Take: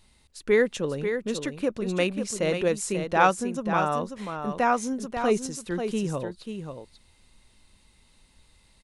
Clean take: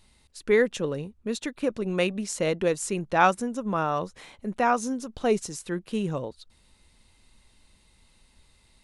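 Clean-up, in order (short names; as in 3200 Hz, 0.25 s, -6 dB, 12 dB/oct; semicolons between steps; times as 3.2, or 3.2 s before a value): inverse comb 0.539 s -7.5 dB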